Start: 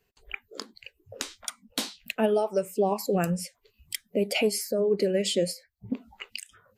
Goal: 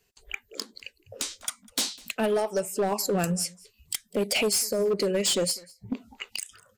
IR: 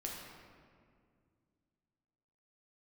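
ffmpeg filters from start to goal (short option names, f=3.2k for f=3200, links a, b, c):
-af "equalizer=f=7.3k:w=0.55:g=10,asoftclip=type=hard:threshold=-20.5dB,aecho=1:1:200:0.0631"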